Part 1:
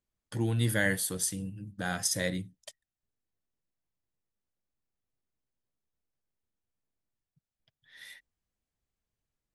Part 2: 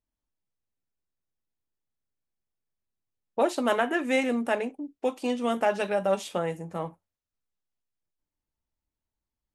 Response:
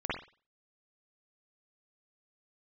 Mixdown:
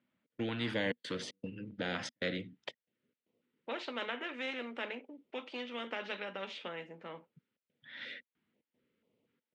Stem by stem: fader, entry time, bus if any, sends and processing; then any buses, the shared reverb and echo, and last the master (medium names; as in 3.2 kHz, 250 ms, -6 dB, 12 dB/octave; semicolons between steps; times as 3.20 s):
-1.5 dB, 0.00 s, no send, trance gate "xx.xxxx.xx.xxx" 115 bpm -60 dB; high-pass 86 Hz; step-sequenced notch 4.1 Hz 440–1600 Hz
-15.0 dB, 0.30 s, no send, tilt shelf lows -9.5 dB, about 1.3 kHz; auto duck -6 dB, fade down 1.70 s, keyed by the first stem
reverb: none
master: cabinet simulation 230–2700 Hz, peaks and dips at 240 Hz +7 dB, 490 Hz +8 dB, 760 Hz -9 dB, 1.1 kHz -8 dB, 1.7 kHz -5 dB, 2.5 kHz -4 dB; spectrum-flattening compressor 2:1